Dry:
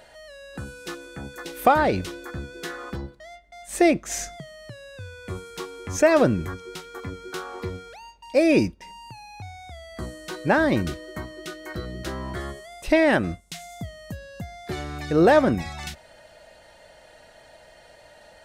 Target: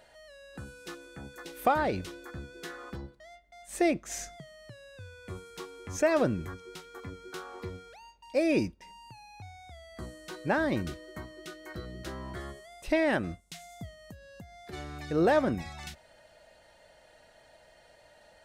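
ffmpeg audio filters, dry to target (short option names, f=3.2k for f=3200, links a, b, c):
-filter_complex "[0:a]asplit=3[a][b][c];[a]afade=t=out:st=13.94:d=0.02[d];[b]acompressor=threshold=-36dB:ratio=6,afade=t=in:st=13.94:d=0.02,afade=t=out:st=14.72:d=0.02[e];[c]afade=t=in:st=14.72:d=0.02[f];[d][e][f]amix=inputs=3:normalize=0,volume=-8dB"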